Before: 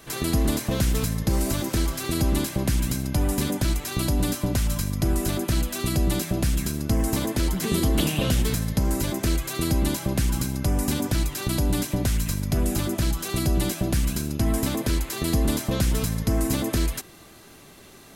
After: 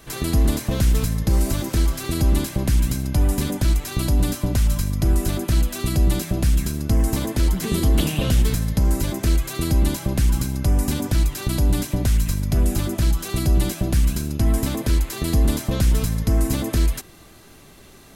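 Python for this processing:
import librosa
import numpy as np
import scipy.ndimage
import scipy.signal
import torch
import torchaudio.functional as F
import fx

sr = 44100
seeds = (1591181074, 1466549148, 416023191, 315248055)

y = fx.low_shelf(x, sr, hz=82.0, db=9.5)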